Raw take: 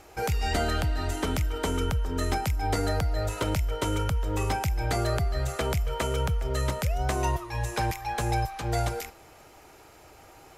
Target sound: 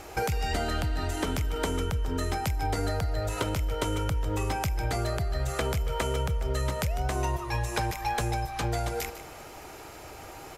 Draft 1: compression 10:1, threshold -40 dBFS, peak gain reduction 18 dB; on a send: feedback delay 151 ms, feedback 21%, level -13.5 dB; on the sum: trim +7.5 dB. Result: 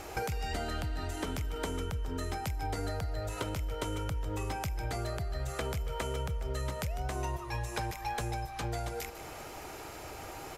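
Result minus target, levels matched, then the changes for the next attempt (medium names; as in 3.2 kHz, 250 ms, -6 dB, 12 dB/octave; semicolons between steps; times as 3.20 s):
compression: peak gain reduction +6.5 dB
change: compression 10:1, threshold -33 dBFS, peak gain reduction 11.5 dB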